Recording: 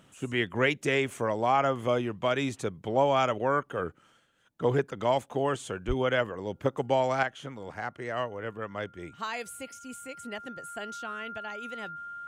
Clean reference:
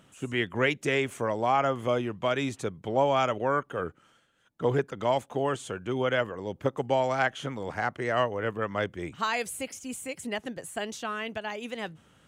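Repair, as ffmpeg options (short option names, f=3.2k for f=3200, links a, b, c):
-filter_complex "[0:a]bandreject=f=1.4k:w=30,asplit=3[a][b][c];[a]afade=t=out:st=5.87:d=0.02[d];[b]highpass=f=140:w=0.5412,highpass=f=140:w=1.3066,afade=t=in:st=5.87:d=0.02,afade=t=out:st=5.99:d=0.02[e];[c]afade=t=in:st=5.99:d=0.02[f];[d][e][f]amix=inputs=3:normalize=0,asetnsamples=n=441:p=0,asendcmd='7.23 volume volume 6dB',volume=0dB"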